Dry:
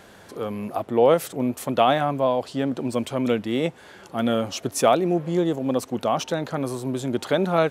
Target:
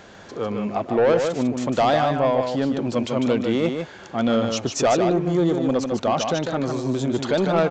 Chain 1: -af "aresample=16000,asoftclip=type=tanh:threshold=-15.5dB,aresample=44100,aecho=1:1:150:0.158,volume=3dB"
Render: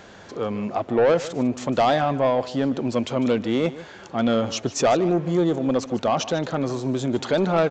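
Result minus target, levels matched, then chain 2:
echo-to-direct -10.5 dB
-af "aresample=16000,asoftclip=type=tanh:threshold=-15.5dB,aresample=44100,aecho=1:1:150:0.531,volume=3dB"

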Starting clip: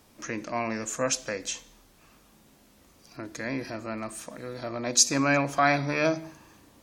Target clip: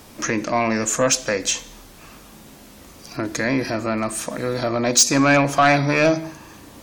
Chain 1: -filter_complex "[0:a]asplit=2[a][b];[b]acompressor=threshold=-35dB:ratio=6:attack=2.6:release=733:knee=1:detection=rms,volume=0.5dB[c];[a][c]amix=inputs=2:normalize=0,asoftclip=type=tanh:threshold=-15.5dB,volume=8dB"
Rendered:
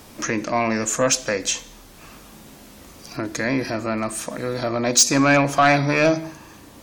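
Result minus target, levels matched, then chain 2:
compressor: peak gain reduction +5 dB
-filter_complex "[0:a]asplit=2[a][b];[b]acompressor=threshold=-29dB:ratio=6:attack=2.6:release=733:knee=1:detection=rms,volume=0.5dB[c];[a][c]amix=inputs=2:normalize=0,asoftclip=type=tanh:threshold=-15.5dB,volume=8dB"

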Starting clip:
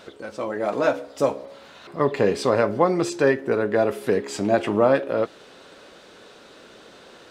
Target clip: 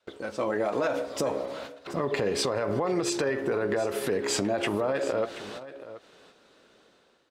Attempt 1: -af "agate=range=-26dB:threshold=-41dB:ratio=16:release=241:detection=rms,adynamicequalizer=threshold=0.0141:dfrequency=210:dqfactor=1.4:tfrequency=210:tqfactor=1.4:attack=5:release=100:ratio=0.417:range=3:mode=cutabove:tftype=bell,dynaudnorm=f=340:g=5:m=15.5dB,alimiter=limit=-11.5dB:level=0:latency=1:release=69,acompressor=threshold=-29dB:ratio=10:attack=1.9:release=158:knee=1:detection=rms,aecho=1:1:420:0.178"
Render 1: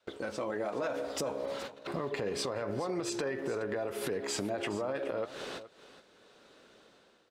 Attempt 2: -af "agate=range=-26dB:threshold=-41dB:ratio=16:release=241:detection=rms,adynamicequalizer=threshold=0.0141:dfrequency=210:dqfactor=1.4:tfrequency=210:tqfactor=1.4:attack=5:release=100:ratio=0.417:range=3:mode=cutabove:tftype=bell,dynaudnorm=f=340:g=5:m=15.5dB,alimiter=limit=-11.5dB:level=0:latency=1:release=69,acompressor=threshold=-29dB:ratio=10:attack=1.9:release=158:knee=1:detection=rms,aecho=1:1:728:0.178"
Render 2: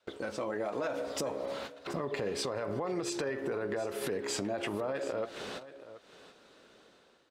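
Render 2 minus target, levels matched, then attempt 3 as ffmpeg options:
compressor: peak gain reduction +7 dB
-af "agate=range=-26dB:threshold=-41dB:ratio=16:release=241:detection=rms,adynamicequalizer=threshold=0.0141:dfrequency=210:dqfactor=1.4:tfrequency=210:tqfactor=1.4:attack=5:release=100:ratio=0.417:range=3:mode=cutabove:tftype=bell,dynaudnorm=f=340:g=5:m=15.5dB,alimiter=limit=-11.5dB:level=0:latency=1:release=69,acompressor=threshold=-21dB:ratio=10:attack=1.9:release=158:knee=1:detection=rms,aecho=1:1:728:0.178"

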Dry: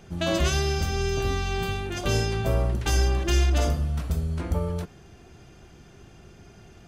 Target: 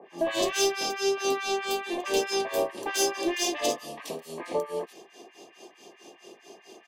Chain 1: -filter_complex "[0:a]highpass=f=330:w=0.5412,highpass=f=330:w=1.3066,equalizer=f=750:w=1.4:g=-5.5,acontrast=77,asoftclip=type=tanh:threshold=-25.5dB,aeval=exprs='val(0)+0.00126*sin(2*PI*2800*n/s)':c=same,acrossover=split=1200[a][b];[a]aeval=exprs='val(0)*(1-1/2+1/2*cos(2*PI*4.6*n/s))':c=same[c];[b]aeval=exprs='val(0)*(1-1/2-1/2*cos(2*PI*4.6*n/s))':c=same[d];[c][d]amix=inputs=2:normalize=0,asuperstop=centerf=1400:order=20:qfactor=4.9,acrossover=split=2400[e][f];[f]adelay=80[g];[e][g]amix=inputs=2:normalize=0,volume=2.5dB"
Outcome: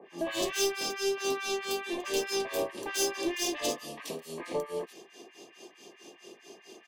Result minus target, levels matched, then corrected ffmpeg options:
soft clip: distortion +5 dB; 1000 Hz band -3.0 dB
-filter_complex "[0:a]highpass=f=330:w=0.5412,highpass=f=330:w=1.3066,acontrast=77,asoftclip=type=tanh:threshold=-18.5dB,aeval=exprs='val(0)+0.00126*sin(2*PI*2800*n/s)':c=same,acrossover=split=1200[a][b];[a]aeval=exprs='val(0)*(1-1/2+1/2*cos(2*PI*4.6*n/s))':c=same[c];[b]aeval=exprs='val(0)*(1-1/2-1/2*cos(2*PI*4.6*n/s))':c=same[d];[c][d]amix=inputs=2:normalize=0,asuperstop=centerf=1400:order=20:qfactor=4.9,acrossover=split=2400[e][f];[f]adelay=80[g];[e][g]amix=inputs=2:normalize=0,volume=2.5dB"

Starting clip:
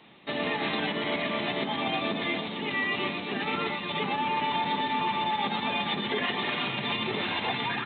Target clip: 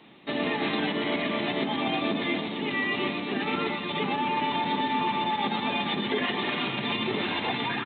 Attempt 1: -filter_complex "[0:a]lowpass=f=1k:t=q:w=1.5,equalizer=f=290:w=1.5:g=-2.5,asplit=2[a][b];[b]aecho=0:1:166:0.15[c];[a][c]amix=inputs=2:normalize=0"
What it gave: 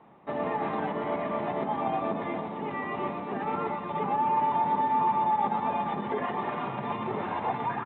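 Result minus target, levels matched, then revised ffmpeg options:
1000 Hz band +5.0 dB; 250 Hz band -3.5 dB
-filter_complex "[0:a]equalizer=f=290:w=1.5:g=5.5,asplit=2[a][b];[b]aecho=0:1:166:0.15[c];[a][c]amix=inputs=2:normalize=0"

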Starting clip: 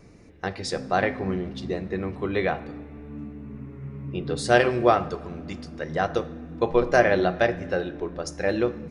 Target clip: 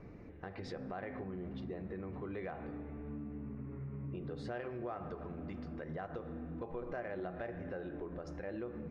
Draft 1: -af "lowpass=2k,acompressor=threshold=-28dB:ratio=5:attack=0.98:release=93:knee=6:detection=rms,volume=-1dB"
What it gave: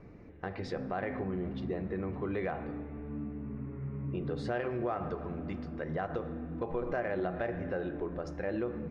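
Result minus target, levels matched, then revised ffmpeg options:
compressor: peak gain reduction -8 dB
-af "lowpass=2k,acompressor=threshold=-38dB:ratio=5:attack=0.98:release=93:knee=6:detection=rms,volume=-1dB"

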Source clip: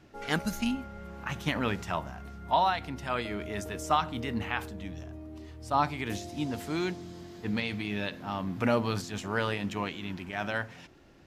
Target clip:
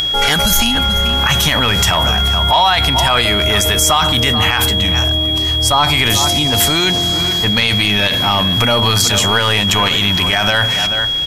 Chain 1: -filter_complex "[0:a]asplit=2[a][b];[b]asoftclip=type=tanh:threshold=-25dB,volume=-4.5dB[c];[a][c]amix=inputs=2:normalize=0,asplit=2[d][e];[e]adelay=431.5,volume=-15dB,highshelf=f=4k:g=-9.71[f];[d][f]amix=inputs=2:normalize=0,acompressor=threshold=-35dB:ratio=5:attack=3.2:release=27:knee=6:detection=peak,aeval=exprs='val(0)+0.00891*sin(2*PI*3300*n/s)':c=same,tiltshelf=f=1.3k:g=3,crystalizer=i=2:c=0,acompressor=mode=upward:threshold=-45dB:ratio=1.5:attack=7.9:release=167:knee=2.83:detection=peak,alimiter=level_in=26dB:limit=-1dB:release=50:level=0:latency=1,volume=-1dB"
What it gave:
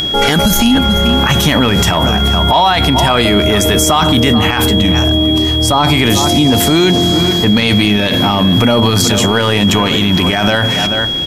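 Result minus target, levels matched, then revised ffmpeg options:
250 Hz band +8.5 dB
-filter_complex "[0:a]asplit=2[a][b];[b]asoftclip=type=tanh:threshold=-25dB,volume=-4.5dB[c];[a][c]amix=inputs=2:normalize=0,asplit=2[d][e];[e]adelay=431.5,volume=-15dB,highshelf=f=4k:g=-9.71[f];[d][f]amix=inputs=2:normalize=0,acompressor=threshold=-35dB:ratio=5:attack=3.2:release=27:knee=6:detection=peak,equalizer=f=270:t=o:w=2.3:g=-12.5,aeval=exprs='val(0)+0.00891*sin(2*PI*3300*n/s)':c=same,tiltshelf=f=1.3k:g=3,crystalizer=i=2:c=0,acompressor=mode=upward:threshold=-45dB:ratio=1.5:attack=7.9:release=167:knee=2.83:detection=peak,alimiter=level_in=26dB:limit=-1dB:release=50:level=0:latency=1,volume=-1dB"

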